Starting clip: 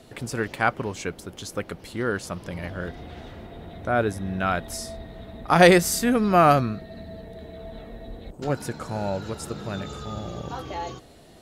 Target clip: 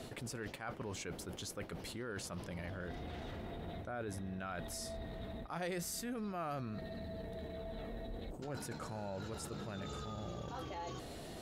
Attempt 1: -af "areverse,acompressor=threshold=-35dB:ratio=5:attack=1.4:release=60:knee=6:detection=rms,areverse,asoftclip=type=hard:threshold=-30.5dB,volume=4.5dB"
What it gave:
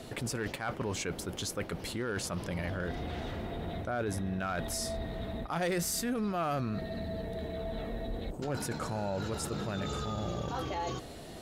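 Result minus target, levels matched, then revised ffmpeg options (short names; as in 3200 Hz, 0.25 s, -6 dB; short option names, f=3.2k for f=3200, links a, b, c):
compressor: peak gain reduction -9 dB
-af "areverse,acompressor=threshold=-46dB:ratio=5:attack=1.4:release=60:knee=6:detection=rms,areverse,asoftclip=type=hard:threshold=-30.5dB,volume=4.5dB"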